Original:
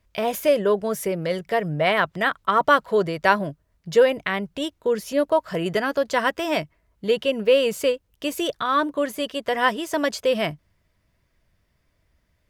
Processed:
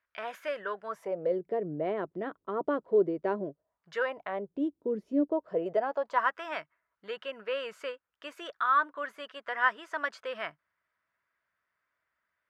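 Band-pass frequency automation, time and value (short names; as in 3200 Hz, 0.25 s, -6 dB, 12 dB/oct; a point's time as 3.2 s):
band-pass, Q 2.9
0.83 s 1500 Hz
1.38 s 350 Hz
3.43 s 350 Hz
3.95 s 1600 Hz
4.61 s 290 Hz
5.2 s 290 Hz
6.36 s 1400 Hz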